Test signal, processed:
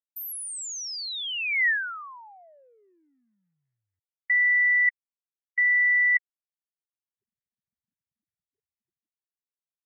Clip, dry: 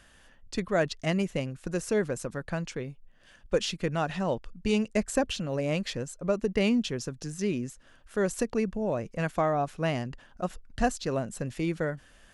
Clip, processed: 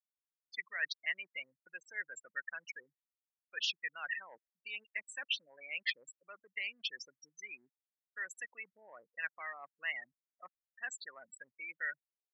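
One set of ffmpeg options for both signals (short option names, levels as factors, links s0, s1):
-af "anlmdn=0.0398,afftfilt=real='re*gte(hypot(re,im),0.0355)':imag='im*gte(hypot(re,im),0.0355)':win_size=1024:overlap=0.75,agate=range=0.0224:threshold=0.00282:ratio=3:detection=peak,areverse,acompressor=threshold=0.0224:ratio=16,areverse,highpass=f=1900:t=q:w=5.3"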